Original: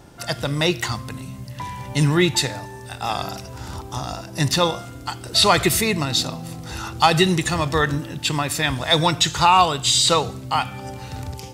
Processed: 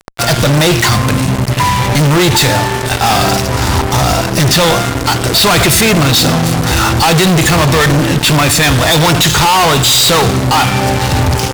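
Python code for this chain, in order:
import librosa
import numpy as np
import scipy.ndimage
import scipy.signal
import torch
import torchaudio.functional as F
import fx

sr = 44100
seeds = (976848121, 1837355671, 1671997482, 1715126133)

y = fx.high_shelf(x, sr, hz=7800.0, db=-7.0)
y = fx.fuzz(y, sr, gain_db=40.0, gate_db=-37.0)
y = y * librosa.db_to_amplitude(5.5)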